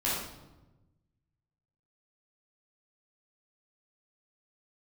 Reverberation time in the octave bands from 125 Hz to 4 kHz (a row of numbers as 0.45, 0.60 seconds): 1.8, 1.5, 1.2, 1.0, 0.75, 0.70 seconds